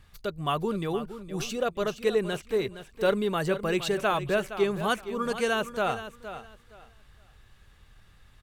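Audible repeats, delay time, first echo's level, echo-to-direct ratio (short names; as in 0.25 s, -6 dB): 2, 0.466 s, -12.0 dB, -12.0 dB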